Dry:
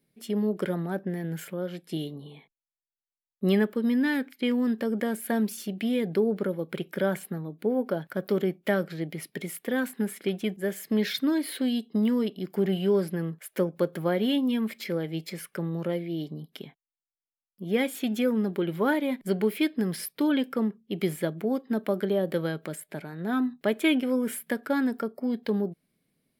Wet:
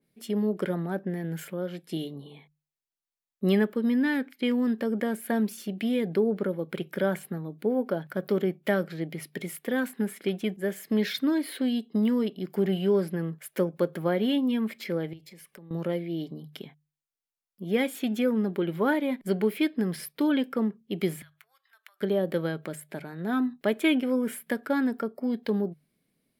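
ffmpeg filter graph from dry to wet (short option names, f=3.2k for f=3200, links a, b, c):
-filter_complex "[0:a]asettb=1/sr,asplit=3[a][b][c];[a]atrim=end=15.134[d];[b]atrim=start=15.13:end=15.71,asetpts=PTS-STARTPTS,afade=t=in:d=0.004:c=qsin,afade=t=out:st=0.576:d=0.004:c=qsin,equalizer=f=1.4k:w=6.5:g=-13,acompressor=threshold=-46dB:ratio=6:attack=3.2:release=140:knee=1:detection=peak,aeval=exprs='(mod(25.1*val(0)+1,2)-1)/25.1':c=same[e];[c]atrim=start=15.706[f];[d][e]acrossfade=d=0.004:c1=hsin:c2=qsin[g];[g][f]acrossfade=d=0.004:c1=qsin:c2=hsin,asettb=1/sr,asplit=3[h][i][j];[h]atrim=end=21.224[k];[i]atrim=start=21.22:end=22.01,asetpts=PTS-STARTPTS,afade=t=in:d=0.004:c=qsin,afade=t=out:st=0.786:d=0.004:c=qsin,bandreject=f=4.9k:w=24,acompressor=threshold=-41dB:ratio=5:attack=3.2:release=140:knee=1:detection=peak,highpass=f=1.3k:w=0.5412,highpass=f=1.3k:w=1.3066[l];[j]atrim=start=22.006[m];[k][l]acrossfade=d=0.004:c1=hsin:c2=qsin[n];[n][m]acrossfade=d=0.004:c1=qsin:c2=hsin,bandreject=f=50:t=h:w=6,bandreject=f=100:t=h:w=6,bandreject=f=150:t=h:w=6,adynamicequalizer=threshold=0.00447:dfrequency=3200:dqfactor=0.7:tfrequency=3200:tqfactor=0.7:attack=5:release=100:ratio=0.375:range=2.5:mode=cutabove:tftype=highshelf"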